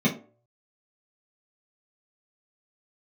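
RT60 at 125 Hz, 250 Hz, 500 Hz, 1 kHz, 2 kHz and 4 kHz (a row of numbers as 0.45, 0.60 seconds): 0.45, 0.40, 0.50, 0.40, 0.25, 0.20 seconds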